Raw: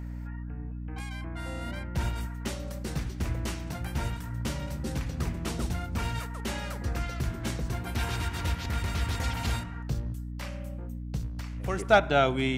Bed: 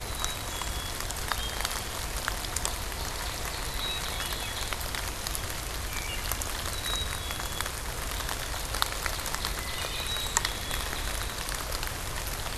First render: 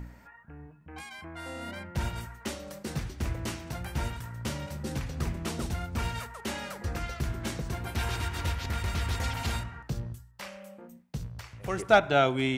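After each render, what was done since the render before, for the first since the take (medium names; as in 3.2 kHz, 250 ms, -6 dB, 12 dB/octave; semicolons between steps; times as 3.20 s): de-hum 60 Hz, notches 5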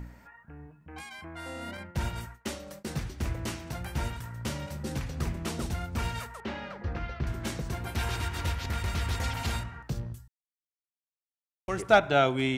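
1.77–2.97 s: expander -41 dBFS; 6.40–7.27 s: distance through air 250 m; 10.28–11.68 s: mute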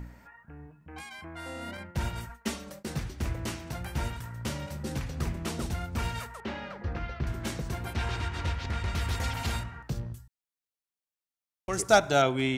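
2.29–2.70 s: comb 4.4 ms, depth 87%; 7.93–8.95 s: distance through air 72 m; 11.73–12.22 s: resonant high shelf 4.1 kHz +11.5 dB, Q 1.5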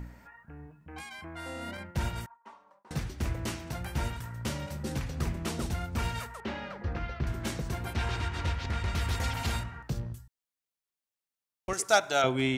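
2.26–2.91 s: band-pass filter 980 Hz, Q 6.8; 11.73–12.24 s: high-pass 770 Hz 6 dB/octave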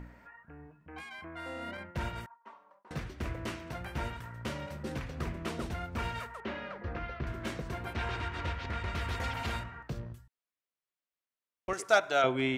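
tone controls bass -6 dB, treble -11 dB; band-stop 830 Hz, Q 12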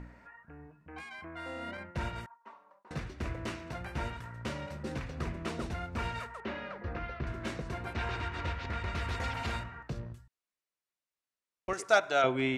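low-pass 10 kHz 12 dB/octave; band-stop 3.2 kHz, Q 22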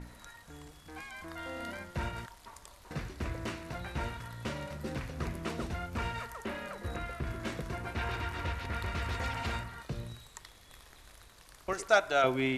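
add bed -23 dB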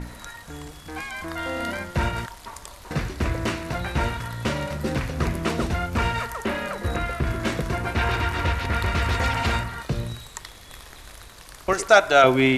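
trim +12 dB; peak limiter -3 dBFS, peak gain reduction 3 dB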